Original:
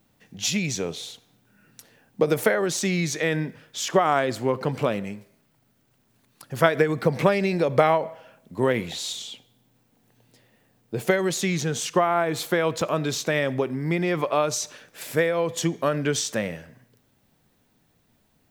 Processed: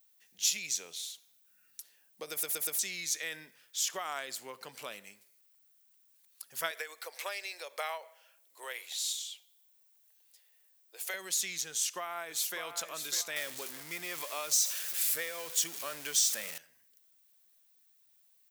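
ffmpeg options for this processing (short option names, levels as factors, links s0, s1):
-filter_complex "[0:a]asettb=1/sr,asplit=3[s0][s1][s2];[s0]atrim=end=6.714[s3];[s1]atrim=start=6.71:end=11.14,asetpts=PTS-STARTPTS,afade=t=in:d=0.004:c=qsin,afade=t=out:st=4.426:d=0.004:c=qsin,highpass=f=460:w=0.5412,highpass=f=460:w=1.3066[s4];[s2]atrim=start=11.136[s5];[s3][s4]acrossfade=d=0.004:c1=hsin:c2=qsin[s6];[s6][s5]acrossfade=d=0.004:c1=qsin:c2=hsin,asplit=2[s7][s8];[s8]afade=t=in:st=11.7:d=0.01,afade=t=out:st=12.61:d=0.01,aecho=0:1:600|1200|1800|2400:0.398107|0.139338|0.0487681|0.0170688[s9];[s7][s9]amix=inputs=2:normalize=0,asettb=1/sr,asplit=3[s10][s11][s12];[s10]atrim=end=13.364[s13];[s11]atrim=start=13.36:end=16.58,asetpts=PTS-STARTPTS,afade=t=in:d=0.004:c=qsin,afade=t=out:st=3.216:d=0.004:c=qsin,aeval=exprs='val(0)+0.5*0.0355*sgn(val(0))':c=same[s14];[s12]atrim=start=16.576[s15];[s13][s14]acrossfade=d=0.004:c1=hsin:c2=qsin[s16];[s16][s15]acrossfade=d=0.004:c1=qsin:c2=hsin,asplit=5[s17][s18][s19][s20][s21];[s17]atrim=end=2.432[s22];[s18]atrim=start=2.308:end=2.432[s23];[s19]atrim=start=2.308:end=2.432[s24];[s20]atrim=start=2.308:end=2.432[s25];[s21]atrim=start=2.788[s26];[s22][s23]acrossfade=d=0.004:c1=hsin:c2=hsin[s27];[s27][s24]acrossfade=d=0.004:c1=hsin:c2=hsin[s28];[s28][s25]acrossfade=d=0.004:c1=hsin:c2=hsin[s29];[s29][s26]acrossfade=d=0.004:c1=hsin:c2=hsin,aderivative"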